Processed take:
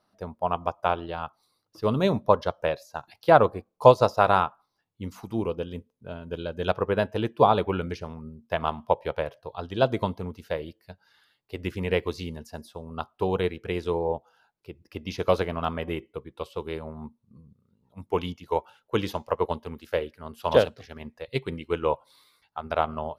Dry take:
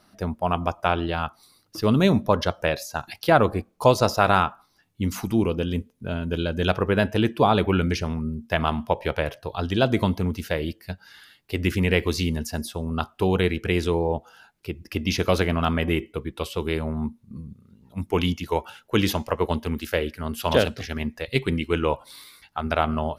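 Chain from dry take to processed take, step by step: graphic EQ 125/500/1000/4000 Hz +5/+8/+8/+4 dB; upward expander 1.5:1, over -28 dBFS; gain -5.5 dB

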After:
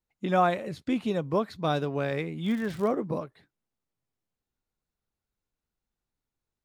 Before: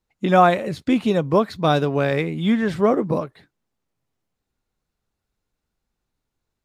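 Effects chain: 2.44–2.9 crackle 130/s -26 dBFS; gain -9 dB

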